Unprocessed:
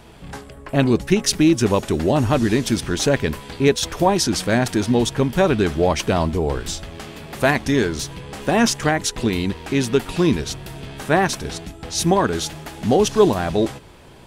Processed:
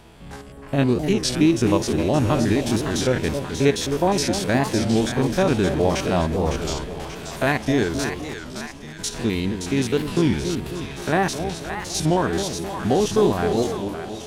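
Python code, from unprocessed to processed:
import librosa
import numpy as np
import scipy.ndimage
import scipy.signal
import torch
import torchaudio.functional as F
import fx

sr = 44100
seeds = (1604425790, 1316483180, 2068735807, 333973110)

y = fx.spec_steps(x, sr, hold_ms=50)
y = fx.tone_stack(y, sr, knobs='10-0-1', at=(8.35, 8.99))
y = fx.echo_split(y, sr, split_hz=750.0, low_ms=262, high_ms=571, feedback_pct=52, wet_db=-7.0)
y = fx.record_warp(y, sr, rpm=33.33, depth_cents=160.0)
y = F.gain(torch.from_numpy(y), -1.5).numpy()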